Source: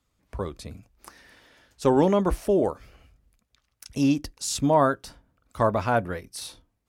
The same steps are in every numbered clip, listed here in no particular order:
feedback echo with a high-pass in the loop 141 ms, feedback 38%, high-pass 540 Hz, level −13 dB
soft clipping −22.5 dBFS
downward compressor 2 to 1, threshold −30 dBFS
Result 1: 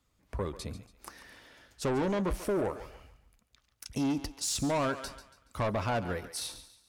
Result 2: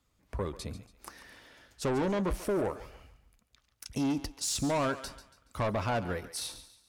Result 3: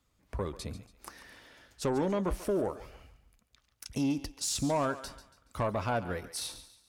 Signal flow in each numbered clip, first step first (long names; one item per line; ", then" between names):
soft clipping, then feedback echo with a high-pass in the loop, then downward compressor
soft clipping, then downward compressor, then feedback echo with a high-pass in the loop
downward compressor, then soft clipping, then feedback echo with a high-pass in the loop